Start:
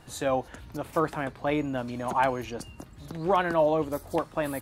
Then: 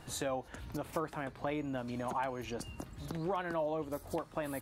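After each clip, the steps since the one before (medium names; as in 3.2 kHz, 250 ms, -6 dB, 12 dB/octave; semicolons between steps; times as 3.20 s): compression 3:1, threshold -36 dBFS, peak gain reduction 13 dB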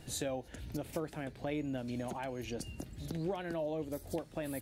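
peaking EQ 1.1 kHz -14 dB 0.93 oct; trim +1.5 dB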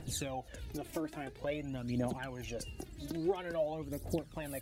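phaser 0.49 Hz, delay 3.4 ms, feedback 61%; trim -1.5 dB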